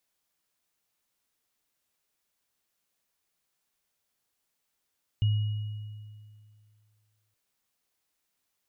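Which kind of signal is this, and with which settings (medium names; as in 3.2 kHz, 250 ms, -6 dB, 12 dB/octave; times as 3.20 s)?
sine partials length 2.12 s, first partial 106 Hz, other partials 2.9 kHz, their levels -18.5 dB, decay 2.24 s, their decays 1.80 s, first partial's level -20 dB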